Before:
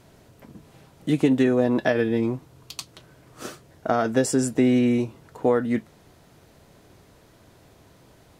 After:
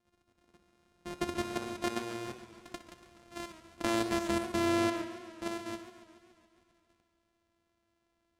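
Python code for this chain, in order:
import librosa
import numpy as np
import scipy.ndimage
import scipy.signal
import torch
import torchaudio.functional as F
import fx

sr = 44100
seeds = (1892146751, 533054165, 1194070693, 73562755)

y = np.r_[np.sort(x[:len(x) // 128 * 128].reshape(-1, 128), axis=1).ravel(), x[len(x) // 128 * 128:]]
y = fx.doppler_pass(y, sr, speed_mps=6, closest_m=3.1, pass_at_s=3.38)
y = scipy.signal.sosfilt(scipy.signal.butter(2, 10000.0, 'lowpass', fs=sr, output='sos'), y)
y = fx.peak_eq(y, sr, hz=130.0, db=-9.0, octaves=0.48)
y = fx.level_steps(y, sr, step_db=10)
y = fx.echo_feedback(y, sr, ms=62, feedback_pct=47, wet_db=-14.5)
y = fx.echo_warbled(y, sr, ms=141, feedback_pct=66, rate_hz=2.8, cents=127, wet_db=-14.5)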